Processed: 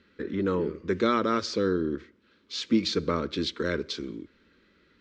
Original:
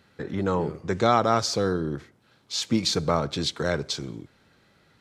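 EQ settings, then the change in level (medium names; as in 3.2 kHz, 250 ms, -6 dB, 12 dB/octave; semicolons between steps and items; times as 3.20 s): distance through air 140 m; treble shelf 6 kHz -6 dB; static phaser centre 310 Hz, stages 4; +2.5 dB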